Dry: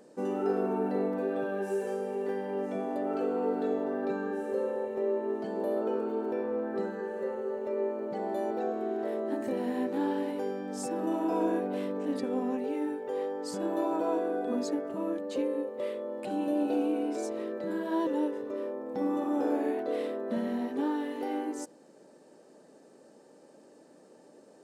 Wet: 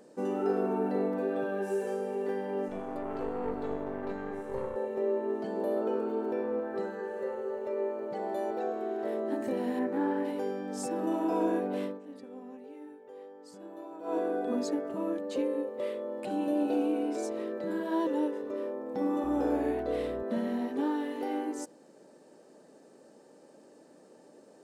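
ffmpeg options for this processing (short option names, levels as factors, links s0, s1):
-filter_complex "[0:a]asettb=1/sr,asplit=3[s0][s1][s2];[s0]atrim=end=2.684[s3];[s1]atrim=start=2.68:end=4.76,asetpts=PTS-STARTPTS,afade=t=in:d=0.004:c=qsin,afade=t=out:st=2.076:d=0.004:c=qsin,aeval=exprs='(tanh(20*val(0)+0.8)-tanh(0.8))/20':c=same[s4];[s2]atrim=start=4.756[s5];[s3][s4]acrossfade=d=0.004:c1=hsin:c2=qsin[s6];[s6][s5]acrossfade=d=0.004:c1=qsin:c2=hsin,asettb=1/sr,asplit=3[s7][s8][s9];[s7]atrim=end=6.604[s10];[s8]atrim=start=6.6:end=9.05,asetpts=PTS-STARTPTS,afade=t=in:d=0.004:c=qsin,afade=t=out:st=2.446:d=0.004:c=qsin,equalizer=f=240:t=o:w=0.77:g=-6.5[s11];[s9]atrim=start=9.046[s12];[s10][s11]acrossfade=d=0.004:c1=hsin:c2=qsin[s13];[s13][s12]acrossfade=d=0.004:c1=qsin:c2=hsin,asettb=1/sr,asplit=3[s14][s15][s16];[s14]atrim=end=9.794[s17];[s15]atrim=start=9.79:end=10.25,asetpts=PTS-STARTPTS,afade=t=in:d=0.004:c=qsin,afade=t=out:st=0.456:d=0.004:c=qsin,highshelf=f=2500:t=q:w=1.5:g=-8[s18];[s16]atrim=start=10.246[s19];[s17][s18]acrossfade=d=0.004:c1=hsin:c2=qsin[s20];[s20][s19]acrossfade=d=0.004:c1=qsin:c2=hsin,asettb=1/sr,asplit=3[s21][s22][s23];[s21]atrim=end=17.804[s24];[s22]atrim=start=17.8:end=18.45,asetpts=PTS-STARTPTS,afade=t=in:d=0.004:c=qsin,afade=t=out:st=0.646:d=0.004:c=qsin,highpass=140[s25];[s23]atrim=start=18.446[s26];[s24][s25]acrossfade=d=0.004:c1=hsin:c2=qsin[s27];[s27][s26]acrossfade=d=0.004:c1=qsin:c2=hsin,asettb=1/sr,asplit=3[s28][s29][s30];[s28]atrim=end=19.244[s31];[s29]atrim=start=19.24:end=20.23,asetpts=PTS-STARTPTS,afade=t=in:d=0.004:c=qsin,afade=t=out:st=0.986:d=0.004:c=qsin,aeval=exprs='val(0)+0.00447*(sin(2*PI*60*n/s)+sin(2*PI*2*60*n/s)/2+sin(2*PI*3*60*n/s)/3+sin(2*PI*4*60*n/s)/4+sin(2*PI*5*60*n/s)/5)':c=same[s32];[s30]atrim=start=20.226[s33];[s31][s32]acrossfade=d=0.004:c1=hsin:c2=qsin[s34];[s34][s33]acrossfade=d=0.004:c1=qsin:c2=hsin,asplit=3[s35][s36][s37];[s35]atrim=end=12,asetpts=PTS-STARTPTS,afade=t=out:st=11.84:d=0.16:silence=0.188365[s38];[s36]atrim=start=12:end=14.02,asetpts=PTS-STARTPTS,volume=0.188[s39];[s37]atrim=start=14.02,asetpts=PTS-STARTPTS,afade=t=in:d=0.16:silence=0.188365[s40];[s38][s39][s40]concat=n=3:v=0:a=1"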